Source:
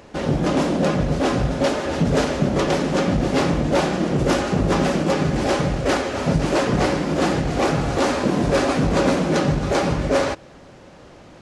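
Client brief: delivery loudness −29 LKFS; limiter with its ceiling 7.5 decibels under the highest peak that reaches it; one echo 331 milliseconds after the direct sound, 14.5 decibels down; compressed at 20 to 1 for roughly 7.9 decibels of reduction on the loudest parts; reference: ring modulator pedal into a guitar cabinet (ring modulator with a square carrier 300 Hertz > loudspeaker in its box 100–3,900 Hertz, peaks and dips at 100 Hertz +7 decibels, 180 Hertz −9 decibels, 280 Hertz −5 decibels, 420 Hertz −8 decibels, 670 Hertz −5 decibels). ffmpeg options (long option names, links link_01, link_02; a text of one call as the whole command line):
ffmpeg -i in.wav -af "acompressor=threshold=-22dB:ratio=20,alimiter=limit=-20.5dB:level=0:latency=1,aecho=1:1:331:0.188,aeval=exprs='val(0)*sgn(sin(2*PI*300*n/s))':channel_layout=same,highpass=100,equalizer=frequency=100:width_type=q:width=4:gain=7,equalizer=frequency=180:width_type=q:width=4:gain=-9,equalizer=frequency=280:width_type=q:width=4:gain=-5,equalizer=frequency=420:width_type=q:width=4:gain=-8,equalizer=frequency=670:width_type=q:width=4:gain=-5,lowpass=frequency=3900:width=0.5412,lowpass=frequency=3900:width=1.3066,volume=2dB" out.wav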